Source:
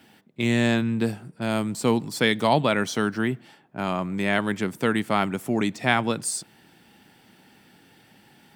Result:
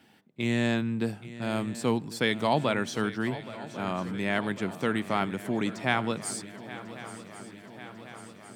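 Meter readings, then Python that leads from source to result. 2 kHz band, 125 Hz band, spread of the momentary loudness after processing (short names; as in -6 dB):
-5.0 dB, -4.5 dB, 18 LU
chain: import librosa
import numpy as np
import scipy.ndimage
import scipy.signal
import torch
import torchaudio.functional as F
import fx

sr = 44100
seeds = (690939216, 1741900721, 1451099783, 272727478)

p1 = fx.high_shelf(x, sr, hz=10000.0, db=-5.5)
p2 = p1 + fx.echo_swing(p1, sr, ms=1096, ratio=3, feedback_pct=65, wet_db=-16, dry=0)
y = p2 * 10.0 ** (-5.0 / 20.0)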